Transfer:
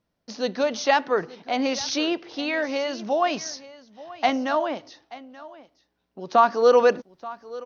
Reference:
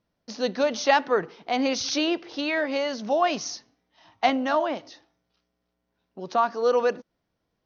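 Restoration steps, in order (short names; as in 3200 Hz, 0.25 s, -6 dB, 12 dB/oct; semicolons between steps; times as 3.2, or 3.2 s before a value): inverse comb 0.881 s -18.5 dB; gain 0 dB, from 6.34 s -5.5 dB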